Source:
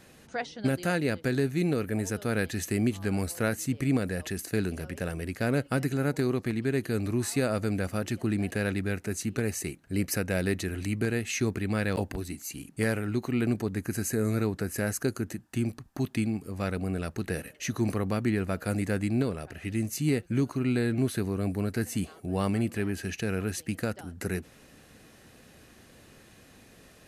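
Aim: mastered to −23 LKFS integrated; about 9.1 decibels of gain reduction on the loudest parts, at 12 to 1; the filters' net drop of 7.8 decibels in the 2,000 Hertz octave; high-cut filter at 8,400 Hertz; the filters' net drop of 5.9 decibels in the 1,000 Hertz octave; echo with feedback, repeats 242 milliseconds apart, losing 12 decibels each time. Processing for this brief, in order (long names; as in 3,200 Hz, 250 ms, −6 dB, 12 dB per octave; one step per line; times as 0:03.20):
low-pass filter 8,400 Hz
parametric band 1,000 Hz −6.5 dB
parametric band 2,000 Hz −8 dB
downward compressor 12 to 1, threshold −31 dBFS
repeating echo 242 ms, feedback 25%, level −12 dB
level +14 dB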